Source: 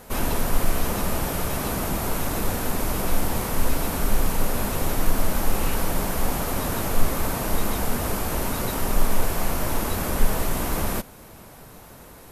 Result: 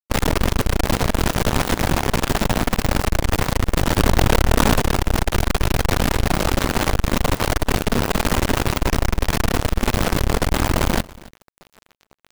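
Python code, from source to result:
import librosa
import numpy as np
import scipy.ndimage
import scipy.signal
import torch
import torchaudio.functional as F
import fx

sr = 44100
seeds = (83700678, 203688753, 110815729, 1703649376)

p1 = scipy.signal.sosfilt(scipy.signal.butter(2, 3700.0, 'lowpass', fs=sr, output='sos'), x)
p2 = fx.low_shelf(p1, sr, hz=480.0, db=4.5)
p3 = fx.volume_shaper(p2, sr, bpm=91, per_beat=1, depth_db=-6, release_ms=207.0, shape='slow start')
p4 = p2 + (p3 * librosa.db_to_amplitude(-9.0))
p5 = fx.fuzz(p4, sr, gain_db=35.0, gate_db=-32.0)
p6 = fx.quant_companded(p5, sr, bits=2)
p7 = p6 + fx.echo_single(p6, sr, ms=279, db=-21.5, dry=0)
p8 = fx.env_flatten(p7, sr, amount_pct=100, at=(3.98, 4.8))
y = p8 * librosa.db_to_amplitude(-10.0)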